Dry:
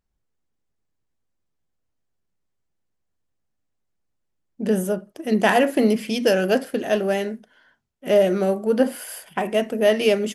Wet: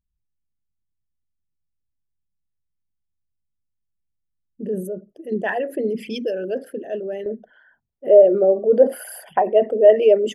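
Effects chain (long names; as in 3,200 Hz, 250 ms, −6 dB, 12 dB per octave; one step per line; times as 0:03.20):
spectral envelope exaggerated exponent 2
parametric band 760 Hz −6.5 dB 2 octaves, from 0:07.26 +9 dB
level −1.5 dB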